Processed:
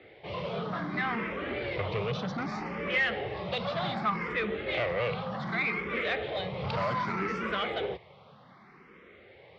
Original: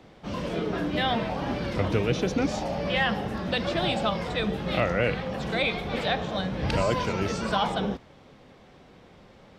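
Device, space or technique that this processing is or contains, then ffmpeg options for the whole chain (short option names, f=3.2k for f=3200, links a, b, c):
barber-pole phaser into a guitar amplifier: -filter_complex "[0:a]asplit=2[a][b];[b]afreqshift=0.65[c];[a][c]amix=inputs=2:normalize=1,asoftclip=type=tanh:threshold=-26.5dB,highpass=100,equalizer=f=270:t=q:w=4:g=-7,equalizer=f=410:t=q:w=4:g=4,equalizer=f=1.2k:t=q:w=4:g=7,equalizer=f=2.1k:t=q:w=4:g=9,lowpass=f=4.3k:w=0.5412,lowpass=f=4.3k:w=1.3066"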